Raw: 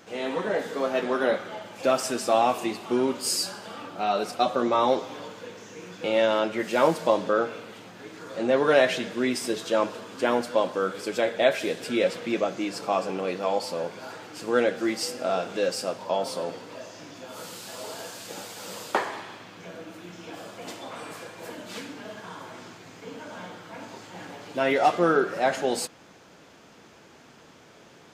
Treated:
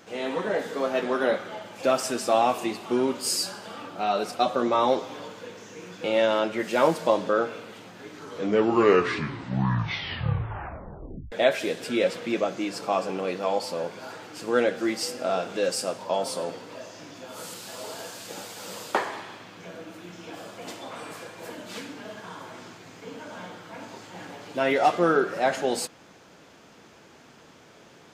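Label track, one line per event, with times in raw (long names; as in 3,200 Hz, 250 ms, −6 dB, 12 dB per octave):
8.010000	8.010000	tape stop 3.31 s
15.630000	17.540000	dynamic equaliser 9,100 Hz, up to +6 dB, over −51 dBFS, Q 1.1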